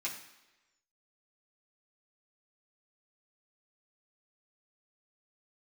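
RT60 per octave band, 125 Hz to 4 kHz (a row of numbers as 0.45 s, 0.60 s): 0.80 s, 0.95 s, 1.1 s, 1.0 s, 1.1 s, 1.0 s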